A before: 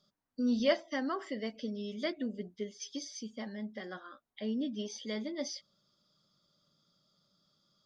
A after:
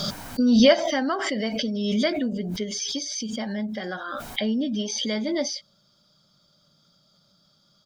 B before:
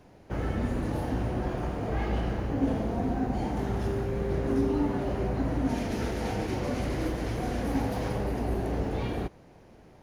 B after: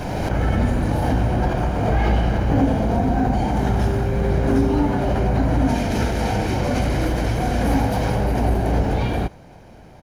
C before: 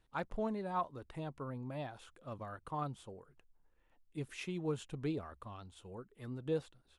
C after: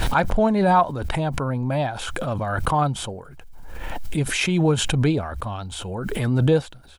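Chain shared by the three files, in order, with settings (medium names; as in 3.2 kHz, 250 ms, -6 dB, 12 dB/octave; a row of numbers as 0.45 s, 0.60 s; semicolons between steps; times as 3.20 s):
comb 1.3 ms, depth 33%; swell ahead of each attack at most 25 dB/s; peak normalisation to -6 dBFS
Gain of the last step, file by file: +10.0 dB, +8.5 dB, +18.0 dB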